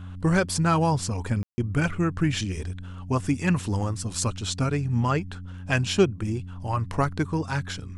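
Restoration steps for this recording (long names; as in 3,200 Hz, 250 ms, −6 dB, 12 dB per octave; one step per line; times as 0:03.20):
hum removal 91.2 Hz, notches 3
ambience match 0:01.43–0:01.58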